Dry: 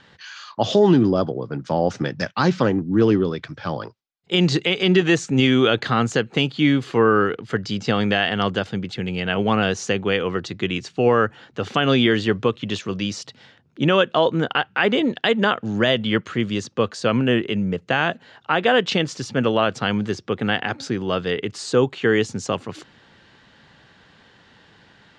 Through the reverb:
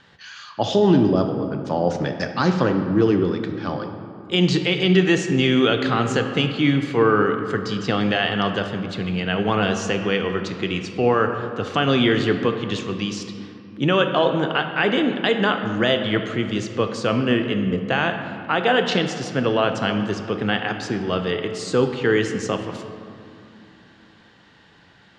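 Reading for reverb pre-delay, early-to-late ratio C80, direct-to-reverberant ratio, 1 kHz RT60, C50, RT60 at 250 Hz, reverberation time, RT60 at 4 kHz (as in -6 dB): 3 ms, 8.0 dB, 5.5 dB, 2.6 s, 7.0 dB, 3.6 s, 2.6 s, 1.3 s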